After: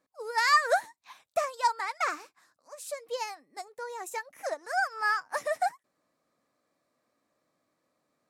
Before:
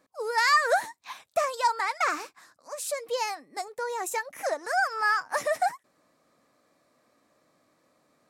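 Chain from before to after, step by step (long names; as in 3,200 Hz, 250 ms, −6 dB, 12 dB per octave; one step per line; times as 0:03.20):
expander for the loud parts 1.5 to 1, over −37 dBFS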